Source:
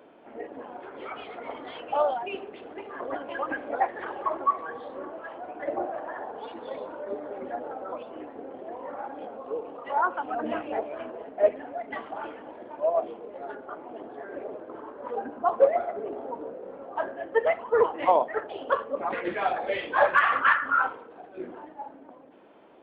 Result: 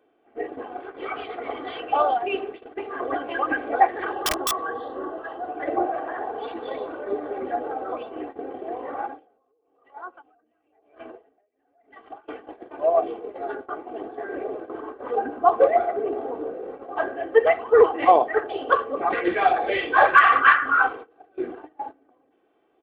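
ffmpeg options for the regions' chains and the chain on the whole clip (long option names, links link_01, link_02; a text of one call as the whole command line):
ffmpeg -i in.wav -filter_complex "[0:a]asettb=1/sr,asplit=3[link_01][link_02][link_03];[link_01]atrim=end=4.134[link_04];[link_02]atrim=start=4.13:end=5.57,asetpts=PTS-STARTPTS,afade=type=in:duration=0.004:curve=qsin,afade=type=out:start_time=1.436:duration=0.004:curve=qsin,equalizer=frequency=2300:width_type=o:width=0.26:gain=-14.5,aeval=exprs='(mod(14.1*val(0)+1,2)-1)/14.1':channel_layout=same[link_05];[link_03]atrim=start=5.566[link_06];[link_04][link_05]acrossfade=duration=0.004:curve1=hsin:curve2=qsin[link_07];[link_07][link_06]acrossfade=duration=0.004:curve1=qsin:curve2=hsin,asettb=1/sr,asplit=3[link_08][link_09][link_10];[link_08]atrim=end=9.064[link_11];[link_09]atrim=start=9.06:end=12.28,asetpts=PTS-STARTPTS,afade=type=in:duration=0.004:curve=qsin,afade=type=out:start_time=3.216:duration=0.004:curve=qsin,acompressor=threshold=-37dB:ratio=10:attack=3.2:release=140:knee=1:detection=peak,aeval=exprs='val(0)*pow(10,-19*(0.5-0.5*cos(2*PI*1*n/s))/20)':channel_layout=same[link_12];[link_10]atrim=start=12.276[link_13];[link_11][link_12]acrossfade=duration=0.004:curve1=hsin:curve2=qsin[link_14];[link_14][link_13]acrossfade=duration=0.004:curve1=qsin:curve2=hsin,agate=range=-18dB:threshold=-41dB:ratio=16:detection=peak,bandreject=frequency=920:width=10,aecho=1:1:2.6:0.52,volume=5.5dB" out.wav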